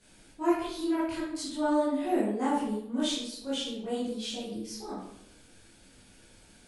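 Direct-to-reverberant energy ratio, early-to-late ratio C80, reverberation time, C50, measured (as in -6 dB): -11.0 dB, 5.0 dB, 0.75 s, 1.0 dB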